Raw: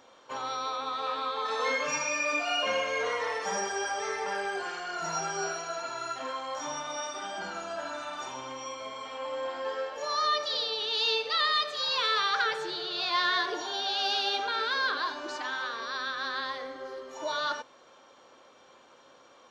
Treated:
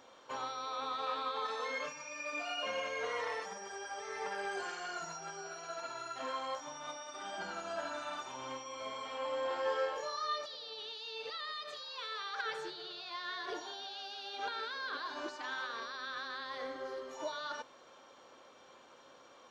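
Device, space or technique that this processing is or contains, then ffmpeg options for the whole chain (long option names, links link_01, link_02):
de-esser from a sidechain: -filter_complex "[0:a]asettb=1/sr,asplit=3[link_01][link_02][link_03];[link_01]atrim=end=11.844[link_04];[link_02]atrim=start=11.84:end=12.44,asetpts=PTS-STARTPTS,afade=type=in:duration=0.004:curve=qsin,afade=type=out:start_time=0.596:duration=0.004:curve=qsin,highpass=frequency=190:width=0.5412,highpass=frequency=190:width=1.3066[link_05];[link_03]atrim=start=12.436[link_06];[link_04][link_05]acrossfade=duration=0.004:curve1=hsin:curve2=qsin[link_07];[link_07][link_06]acrossfade=duration=0.004:curve1=qsin:curve2=hsin,asplit=2[link_08][link_09];[link_09]highpass=frequency=5400:width=0.5412,highpass=frequency=5400:width=1.3066,apad=whole_len=860058[link_10];[link_08][link_10]sidechaincompress=threshold=-52dB:ratio=5:attack=0.56:release=95,asettb=1/sr,asplit=3[link_11][link_12][link_13];[link_11]atrim=end=4.514[link_14];[link_12]atrim=start=4.51:end=5.17,asetpts=PTS-STARTPTS,afade=type=in:duration=0.004:curve=qsin,afade=type=out:start_time=0.656:duration=0.004:curve=qsin,equalizer=frequency=6800:width=2.1:gain=5.5[link_15];[link_13]atrim=start=5.166[link_16];[link_14][link_15]acrossfade=duration=0.004:curve1=hsin:curve2=qsin[link_17];[link_17][link_16]acrossfade=duration=0.004:curve1=qsin:curve2=hsin,asettb=1/sr,asplit=3[link_18][link_19][link_20];[link_18]atrim=end=9.484[link_21];[link_19]atrim=start=9.48:end=10.41,asetpts=PTS-STARTPTS,afade=type=in:duration=0.004:curve=qsin,afade=type=out:start_time=0.926:duration=0.004:curve=qsin,asplit=2[link_22][link_23];[link_23]adelay=25,volume=-3dB[link_24];[link_22][link_24]amix=inputs=2:normalize=0,atrim=end_sample=41013[link_25];[link_20]atrim=start=10.406[link_26];[link_21][link_25]acrossfade=duration=0.004:curve1=hsin:curve2=qsin[link_27];[link_27][link_26]acrossfade=duration=0.004:curve1=qsin:curve2=hsin,volume=-2dB"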